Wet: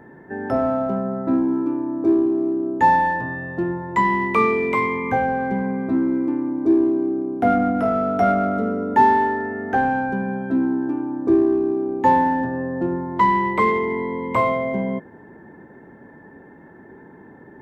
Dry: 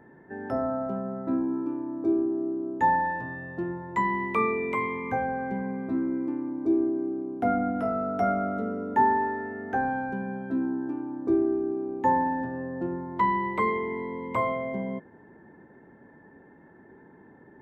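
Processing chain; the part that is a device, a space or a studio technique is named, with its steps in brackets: parallel distortion (in parallel at -13 dB: hard clipper -26.5 dBFS, distortion -8 dB); on the sum: trim +6.5 dB

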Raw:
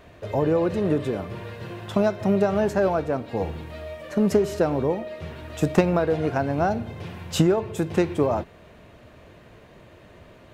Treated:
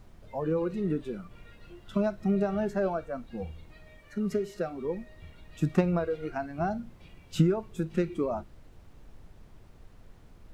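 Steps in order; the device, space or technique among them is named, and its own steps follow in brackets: spectral noise reduction 17 dB; car interior (peaking EQ 150 Hz +6 dB; treble shelf 3.5 kHz -7 dB; brown noise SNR 18 dB); 3.99–4.85 s: bass shelf 430 Hz -5.5 dB; trim -7 dB

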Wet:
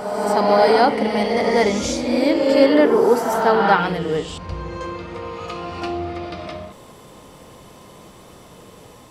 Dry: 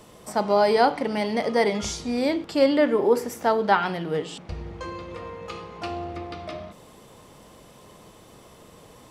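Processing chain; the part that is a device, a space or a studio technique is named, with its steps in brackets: reverse reverb (reverse; reverberation RT60 2.4 s, pre-delay 37 ms, DRR 1.5 dB; reverse); trim +3.5 dB

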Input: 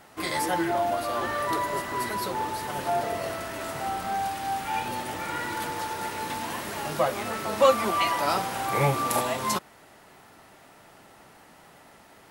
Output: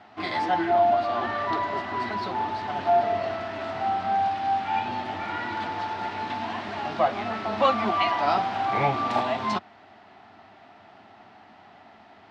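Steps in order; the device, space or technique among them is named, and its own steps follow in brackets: guitar cabinet (cabinet simulation 91–4300 Hz, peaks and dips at 94 Hz +7 dB, 150 Hz -8 dB, 220 Hz +5 dB, 510 Hz -9 dB, 720 Hz +9 dB)

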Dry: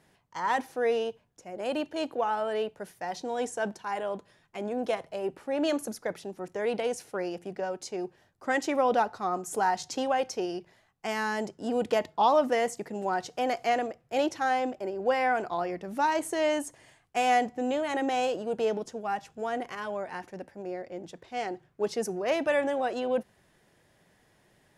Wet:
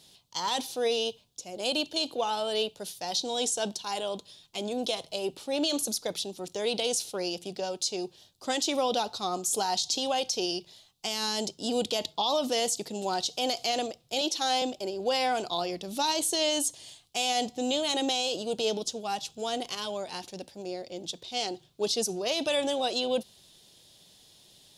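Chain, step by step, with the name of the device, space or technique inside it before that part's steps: over-bright horn tweeter (resonant high shelf 2.6 kHz +12.5 dB, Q 3; peak limiter -18 dBFS, peak gain reduction 9.5 dB); 14.21–14.62 s: high-pass 220 Hz 24 dB/octave

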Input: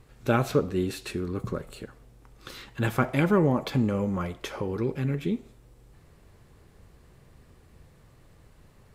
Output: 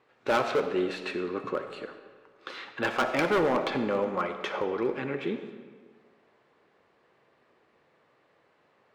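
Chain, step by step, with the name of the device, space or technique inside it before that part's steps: walkie-talkie (band-pass 440–2900 Hz; hard clipper -26 dBFS, distortion -8 dB; gate -53 dBFS, range -7 dB); algorithmic reverb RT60 1.6 s, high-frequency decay 0.75×, pre-delay 20 ms, DRR 8.5 dB; trim +5.5 dB

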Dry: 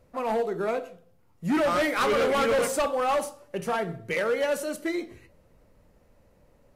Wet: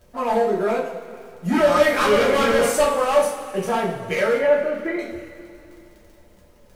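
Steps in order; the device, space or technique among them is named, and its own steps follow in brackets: 4.37–4.99 s: low-pass 2.4 kHz 24 dB/octave; vinyl LP (crackle 26 per s -42 dBFS; pink noise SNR 42 dB); two-slope reverb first 0.35 s, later 2.7 s, from -17 dB, DRR -5 dB

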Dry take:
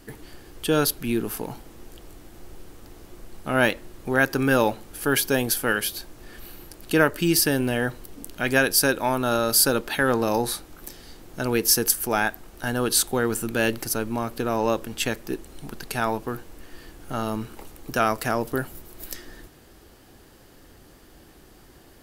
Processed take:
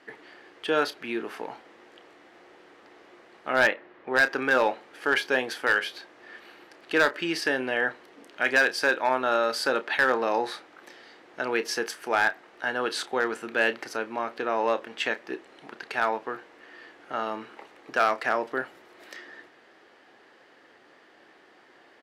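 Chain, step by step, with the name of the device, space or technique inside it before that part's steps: megaphone (band-pass 460–3100 Hz; peaking EQ 1.9 kHz +5.5 dB 0.47 oct; hard clipper -14 dBFS, distortion -16 dB; doubling 31 ms -13 dB); 3.67–4.14 s: low-pass 2.6 kHz 12 dB/octave

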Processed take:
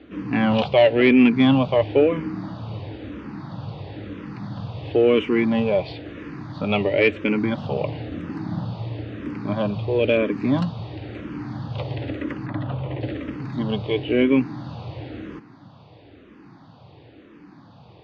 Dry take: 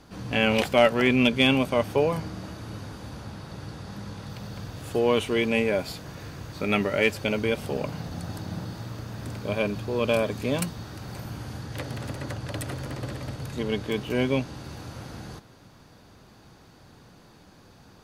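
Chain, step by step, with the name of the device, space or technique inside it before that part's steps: barber-pole phaser into a guitar amplifier (barber-pole phaser -0.99 Hz; saturation -14.5 dBFS, distortion -17 dB; cabinet simulation 87–3500 Hz, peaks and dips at 120 Hz +3 dB, 300 Hz +8 dB, 1.5 kHz -5 dB); 12.46–13.01 s: low-pass 3.2 kHz 24 dB/octave; trim +7 dB

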